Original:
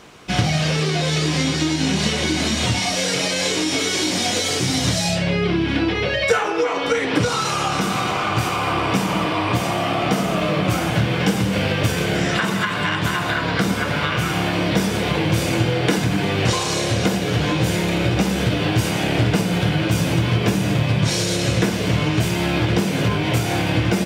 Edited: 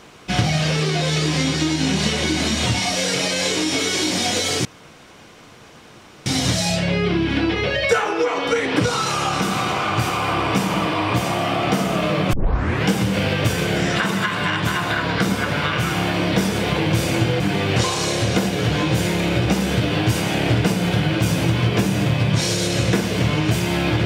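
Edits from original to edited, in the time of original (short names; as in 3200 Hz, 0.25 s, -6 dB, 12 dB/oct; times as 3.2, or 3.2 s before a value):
4.65 insert room tone 1.61 s
10.72 tape start 0.55 s
15.79–16.09 cut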